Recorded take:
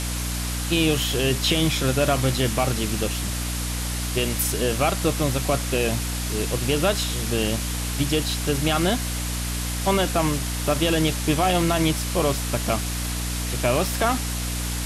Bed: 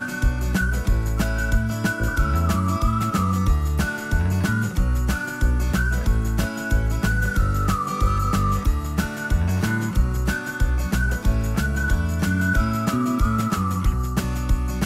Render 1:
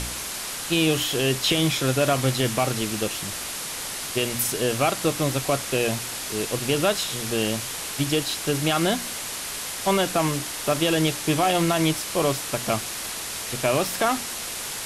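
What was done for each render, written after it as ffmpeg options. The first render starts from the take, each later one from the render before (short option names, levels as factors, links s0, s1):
-af "bandreject=f=60:t=h:w=4,bandreject=f=120:t=h:w=4,bandreject=f=180:t=h:w=4,bandreject=f=240:t=h:w=4,bandreject=f=300:t=h:w=4"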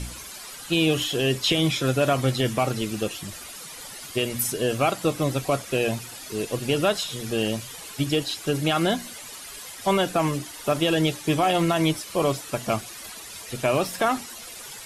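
-af "afftdn=nr=12:nf=-32"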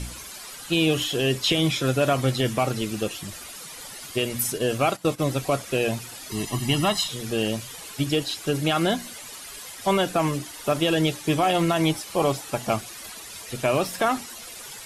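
-filter_complex "[0:a]asplit=3[s0][s1][s2];[s0]afade=t=out:st=4.52:d=0.02[s3];[s1]agate=range=0.224:threshold=0.0251:ratio=16:release=100:detection=peak,afade=t=in:st=4.52:d=0.02,afade=t=out:st=5.18:d=0.02[s4];[s2]afade=t=in:st=5.18:d=0.02[s5];[s3][s4][s5]amix=inputs=3:normalize=0,asettb=1/sr,asplit=3[s6][s7][s8];[s6]atrim=end=6.314[s9];[s7]atrim=start=6.31:end=7.08,asetpts=PTS-STARTPTS,afade=t=in:d=0.004:c=qsin,afade=t=out:st=0.766:d=0.004:c=qsin,aecho=1:1:1:0.94,atrim=end_sample=33957[s10];[s8]atrim=start=7.076[s11];[s9][s10]acrossfade=d=0.004:c1=hsin:c2=qsin[s12];[s12][s11]acrossfade=d=0.004:c1=qsin:c2=hsin,asettb=1/sr,asplit=3[s13][s14][s15];[s13]atrim=end=11.834[s16];[s14]atrim=start=11.83:end=12.73,asetpts=PTS-STARTPTS,afade=t=in:d=0.004:c=qsin,afade=t=out:st=0.896:d=0.004:c=qsin,equalizer=f=810:w=7.8:g=9[s17];[s15]atrim=start=12.726[s18];[s16][s17]acrossfade=d=0.004:c1=hsin:c2=qsin[s19];[s19][s18]acrossfade=d=0.004:c1=qsin:c2=hsin"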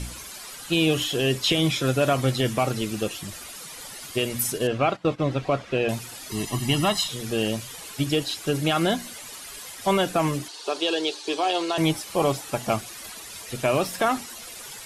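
-filter_complex "[0:a]asettb=1/sr,asplit=3[s0][s1][s2];[s0]atrim=end=4.674[s3];[s1]atrim=start=4.67:end=5.89,asetpts=PTS-STARTPTS,afade=t=in:d=0.004:c=qsin,afade=t=out:st=1.216:d=0.004:c=qsin,lowpass=3300[s4];[s2]atrim=start=5.886[s5];[s3][s4]acrossfade=d=0.004:c1=hsin:c2=qsin[s6];[s6][s5]acrossfade=d=0.004:c1=qsin:c2=hsin,asettb=1/sr,asplit=3[s7][s8][s9];[s7]atrim=end=10.484[s10];[s8]atrim=start=10.48:end=11.78,asetpts=PTS-STARTPTS,afade=t=in:d=0.004:c=qsin,afade=t=out:st=1.296:d=0.004:c=qsin,highpass=f=370:w=0.5412,highpass=f=370:w=1.3066,equalizer=f=410:t=q:w=4:g=4,equalizer=f=590:t=q:w=4:g=-7,equalizer=f=1300:t=q:w=4:g=-5,equalizer=f=2000:t=q:w=4:g=-9,equalizer=f=4300:t=q:w=4:g=9,equalizer=f=7500:t=q:w=4:g=-3,lowpass=f=8300:w=0.5412,lowpass=f=8300:w=1.3066[s11];[s9]atrim=start=11.776[s12];[s10][s11]acrossfade=d=0.004:c1=hsin:c2=qsin[s13];[s13][s12]acrossfade=d=0.004:c1=qsin:c2=hsin"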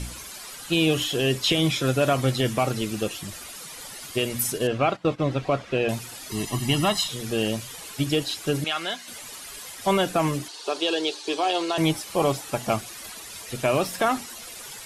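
-filter_complex "[0:a]asettb=1/sr,asplit=3[s0][s1][s2];[s0]atrim=end=8.644[s3];[s1]atrim=start=8.64:end=9.08,asetpts=PTS-STARTPTS,afade=t=in:d=0.004:c=qsin,afade=t=out:st=0.436:d=0.004:c=qsin,bandpass=f=3000:t=q:w=0.54[s4];[s2]atrim=start=9.076[s5];[s3][s4]acrossfade=d=0.004:c1=hsin:c2=qsin[s6];[s6][s5]acrossfade=d=0.004:c1=qsin:c2=hsin"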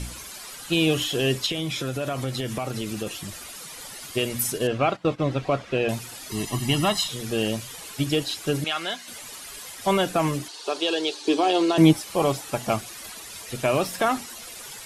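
-filter_complex "[0:a]asettb=1/sr,asplit=3[s0][s1][s2];[s0]atrim=end=1.464[s3];[s1]atrim=start=1.46:end=3.07,asetpts=PTS-STARTPTS,afade=t=in:d=0.004:c=qsin,afade=t=out:st=1.606:d=0.004:c=qsin,acompressor=threshold=0.0562:ratio=4:attack=3.2:release=140:knee=1:detection=peak[s4];[s2]atrim=start=3.066[s5];[s3][s4]acrossfade=d=0.004:c1=hsin:c2=qsin[s6];[s6][s5]acrossfade=d=0.004:c1=qsin:c2=hsin,asettb=1/sr,asplit=3[s7][s8][s9];[s7]atrim=end=11.214[s10];[s8]atrim=start=11.21:end=11.93,asetpts=PTS-STARTPTS,afade=t=in:d=0.004:c=qsin,afade=t=out:st=0.716:d=0.004:c=qsin,equalizer=f=240:t=o:w=1.3:g=12.5[s11];[s9]atrim=start=11.926[s12];[s10][s11]acrossfade=d=0.004:c1=hsin:c2=qsin[s13];[s13][s12]acrossfade=d=0.004:c1=qsin:c2=hsin"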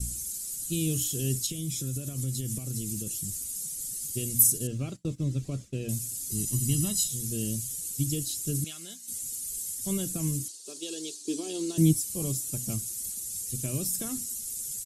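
-af "firequalizer=gain_entry='entry(120,0);entry(740,-29);entry(7200,7)':delay=0.05:min_phase=1,agate=range=0.0224:threshold=0.0158:ratio=3:detection=peak"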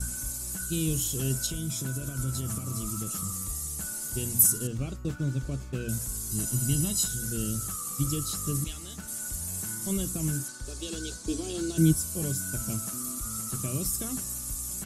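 -filter_complex "[1:a]volume=0.1[s0];[0:a][s0]amix=inputs=2:normalize=0"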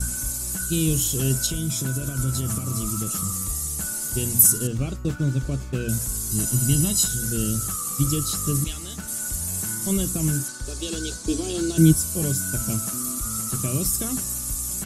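-af "volume=2.11,alimiter=limit=0.708:level=0:latency=1"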